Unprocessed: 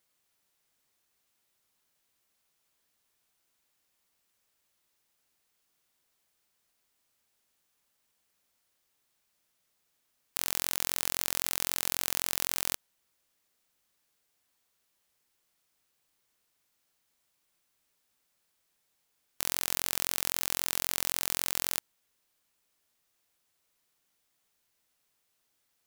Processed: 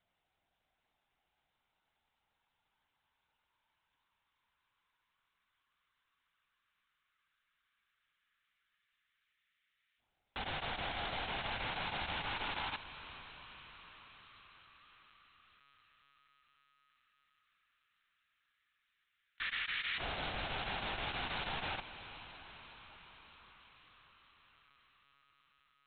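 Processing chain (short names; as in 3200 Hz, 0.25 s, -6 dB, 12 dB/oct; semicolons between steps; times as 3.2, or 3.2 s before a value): diffused feedback echo 0.453 s, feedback 67%, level -13 dB; LFO high-pass saw up 0.1 Hz 560–1900 Hz; monotone LPC vocoder at 8 kHz 140 Hz; gain -1.5 dB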